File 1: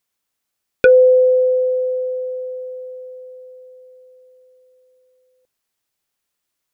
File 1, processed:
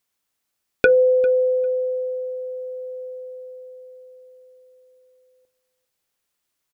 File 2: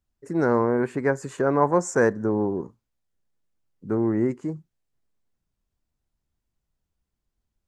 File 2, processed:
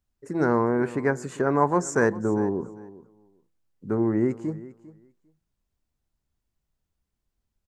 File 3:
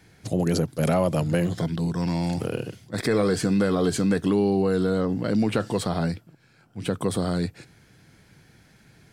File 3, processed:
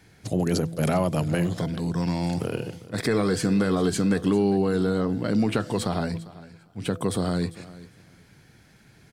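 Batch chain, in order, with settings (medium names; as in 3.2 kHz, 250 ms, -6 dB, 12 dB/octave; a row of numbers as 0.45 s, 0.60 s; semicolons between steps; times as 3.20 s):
de-hum 166 Hz, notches 4; dynamic bell 530 Hz, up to -6 dB, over -32 dBFS, Q 4.8; feedback delay 399 ms, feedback 15%, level -18.5 dB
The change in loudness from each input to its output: -5.5 LU, -1.0 LU, -0.5 LU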